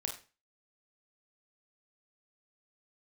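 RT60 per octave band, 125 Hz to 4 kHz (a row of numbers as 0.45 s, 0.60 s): 0.40 s, 0.40 s, 0.35 s, 0.35 s, 0.35 s, 0.30 s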